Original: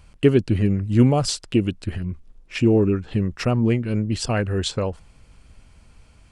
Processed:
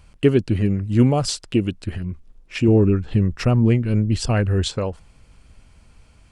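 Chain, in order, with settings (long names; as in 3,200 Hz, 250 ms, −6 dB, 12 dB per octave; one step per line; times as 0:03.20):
0:02.68–0:04.68: low-shelf EQ 130 Hz +9 dB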